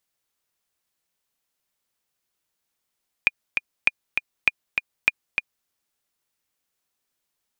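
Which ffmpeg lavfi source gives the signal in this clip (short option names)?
-f lavfi -i "aevalsrc='pow(10,(-3-5.5*gte(mod(t,2*60/199),60/199))/20)*sin(2*PI*2430*mod(t,60/199))*exp(-6.91*mod(t,60/199)/0.03)':d=2.41:s=44100"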